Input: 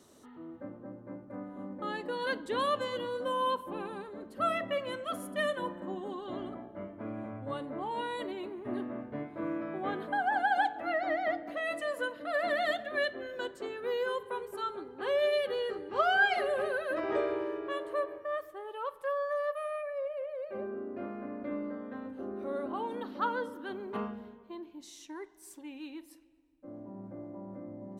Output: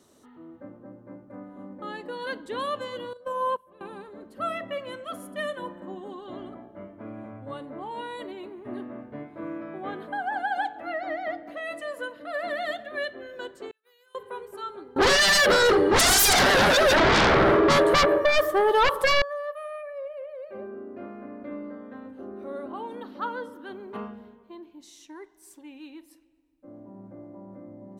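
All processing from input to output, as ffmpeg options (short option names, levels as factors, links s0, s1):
-filter_complex "[0:a]asettb=1/sr,asplit=3[s0][s1][s2];[s0]atrim=end=3.134[s3];[s1]atrim=start=3.13:end=3.81,asetpts=PTS-STARTPTS,afade=t=in:d=0.004:c=qsin,afade=t=out:st=0.676:d=0.004:c=qsin,aecho=1:1:1.8:0.7,atrim=end_sample=29988,agate=range=0.141:threshold=0.0355:ratio=16:release=100:detection=peak[s4];[s2]atrim=start=3.806[s5];[s3][s4]acrossfade=d=0.004:c1=hsin:c2=qsin[s6];[s6][s5]acrossfade=d=0.004:c1=qsin:c2=hsin,asettb=1/sr,asplit=3[s7][s8][s9];[s7]atrim=end=13.714[s10];[s8]atrim=start=13.71:end=14.15,asetpts=PTS-STARTPTS,afade=t=in:d=0.004:c=qsin,afade=t=out:st=0.436:d=0.004:c=qsin,agate=range=0.0224:threshold=0.0398:ratio=3:release=100:detection=peak,aderivative,acompressor=threshold=0.00126:ratio=5:attack=3.2:release=140:knee=1:detection=peak[s11];[s9]atrim=start=14.146[s12];[s10][s11]acrossfade=d=0.004:c1=hsin:c2=qsin[s13];[s13][s12]acrossfade=d=0.004:c1=qsin:c2=hsin,asettb=1/sr,asplit=3[s14][s15][s16];[s14]atrim=end=14.964[s17];[s15]atrim=start=14.96:end=19.22,asetpts=PTS-STARTPTS,afade=t=in:d=0.004:c=qsin,afade=t=out:st=4.256:d=0.004:c=qsin,aeval=exprs='0.178*sin(PI/2*10*val(0)/0.178)':c=same,equalizer=f=2600:w=3.3:g=-5.5[s18];[s16]atrim=start=19.216[s19];[s17][s18]acrossfade=d=0.004:c1=hsin:c2=qsin[s20];[s20][s19]acrossfade=d=0.004:c1=qsin:c2=hsin"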